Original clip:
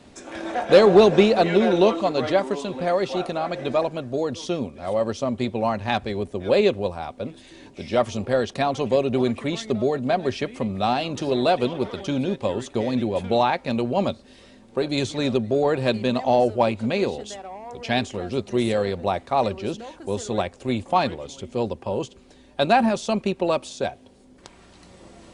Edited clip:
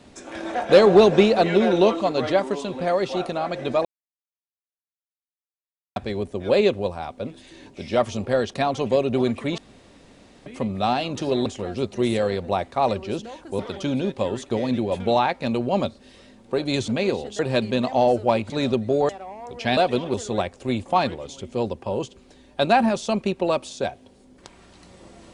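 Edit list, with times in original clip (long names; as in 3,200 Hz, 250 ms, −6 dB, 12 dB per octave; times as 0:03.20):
0:03.85–0:05.96: silence
0:09.58–0:10.46: fill with room tone
0:11.46–0:11.83: swap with 0:18.01–0:20.14
0:15.12–0:15.71: swap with 0:16.82–0:17.33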